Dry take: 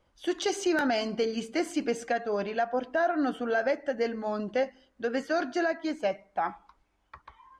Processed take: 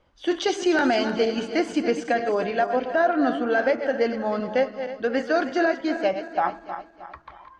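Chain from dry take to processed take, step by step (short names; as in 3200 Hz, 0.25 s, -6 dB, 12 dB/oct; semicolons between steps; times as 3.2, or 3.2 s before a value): regenerating reverse delay 0.157 s, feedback 62%, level -9.5 dB; LPF 5200 Hz 12 dB/oct; notches 50/100/150/200 Hz; gain +5.5 dB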